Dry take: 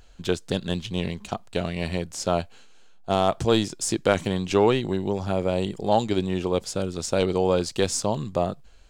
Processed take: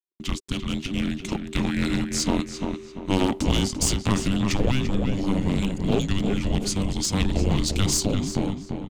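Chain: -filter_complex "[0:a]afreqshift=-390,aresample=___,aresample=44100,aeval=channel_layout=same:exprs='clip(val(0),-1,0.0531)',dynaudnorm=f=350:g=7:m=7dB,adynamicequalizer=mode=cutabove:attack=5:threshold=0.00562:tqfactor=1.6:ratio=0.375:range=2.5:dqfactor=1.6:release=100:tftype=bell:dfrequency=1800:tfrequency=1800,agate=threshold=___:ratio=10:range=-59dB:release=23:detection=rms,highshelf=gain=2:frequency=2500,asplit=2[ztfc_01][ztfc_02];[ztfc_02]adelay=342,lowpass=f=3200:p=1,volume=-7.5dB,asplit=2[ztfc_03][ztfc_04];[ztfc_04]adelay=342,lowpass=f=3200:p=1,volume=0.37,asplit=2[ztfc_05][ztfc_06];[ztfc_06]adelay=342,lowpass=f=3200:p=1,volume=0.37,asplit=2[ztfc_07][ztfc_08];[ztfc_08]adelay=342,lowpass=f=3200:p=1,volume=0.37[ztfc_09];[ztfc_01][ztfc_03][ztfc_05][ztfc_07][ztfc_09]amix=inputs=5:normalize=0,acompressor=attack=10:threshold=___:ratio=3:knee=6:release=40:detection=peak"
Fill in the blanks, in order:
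32000, -44dB, -20dB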